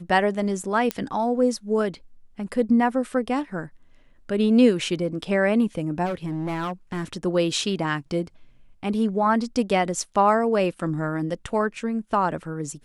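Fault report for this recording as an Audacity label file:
0.910000	0.910000	pop -9 dBFS
6.050000	7.130000	clipped -24 dBFS

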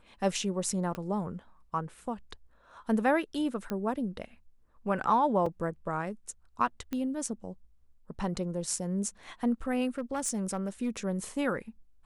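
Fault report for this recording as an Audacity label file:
0.950000	0.950000	pop -23 dBFS
3.700000	3.700000	pop -20 dBFS
5.460000	5.460000	gap 3.9 ms
6.930000	6.930000	pop -21 dBFS
9.980000	10.900000	clipped -25.5 dBFS

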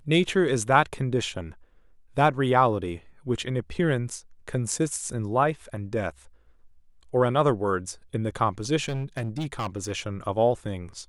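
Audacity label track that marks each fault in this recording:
8.840000	9.920000	clipped -25 dBFS

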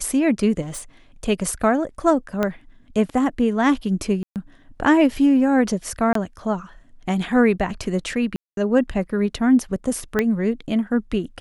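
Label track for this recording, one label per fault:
0.610000	0.820000	clipped -27.5 dBFS
2.430000	2.430000	pop -9 dBFS
4.230000	4.360000	gap 0.128 s
6.130000	6.150000	gap 23 ms
8.360000	8.570000	gap 0.212 s
10.190000	10.190000	pop -7 dBFS

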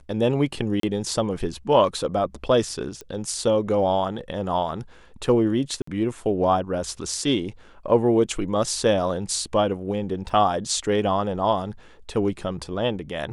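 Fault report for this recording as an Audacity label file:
0.800000	0.830000	gap 33 ms
3.010000	3.010000	pop -21 dBFS
5.820000	5.870000	gap 54 ms
10.290000	10.290000	gap 3.6 ms

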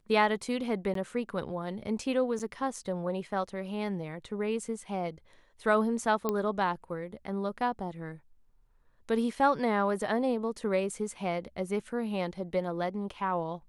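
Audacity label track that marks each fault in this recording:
0.940000	0.950000	gap 13 ms
2.390000	2.400000	gap 7.6 ms
6.290000	6.290000	pop -16 dBFS

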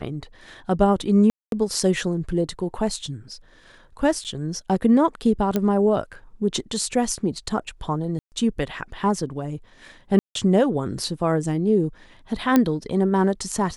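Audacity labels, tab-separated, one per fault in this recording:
1.300000	1.520000	gap 0.222 s
4.240000	4.250000	gap 8.4 ms
5.560000	5.560000	pop -9 dBFS
8.190000	8.320000	gap 0.129 s
10.190000	10.350000	gap 0.163 s
12.560000	12.560000	pop -5 dBFS

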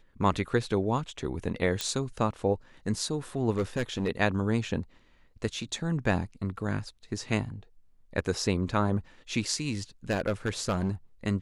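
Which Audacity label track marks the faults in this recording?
1.810000	1.810000	pop -13 dBFS
3.500000	4.090000	clipped -23 dBFS
10.100000	10.900000	clipped -22 dBFS

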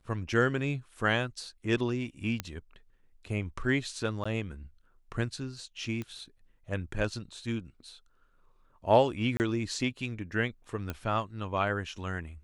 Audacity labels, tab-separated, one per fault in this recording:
2.400000	2.400000	pop -16 dBFS
4.240000	4.250000	gap 15 ms
6.020000	6.020000	pop -24 dBFS
9.370000	9.400000	gap 29 ms
10.900000	10.900000	pop -20 dBFS

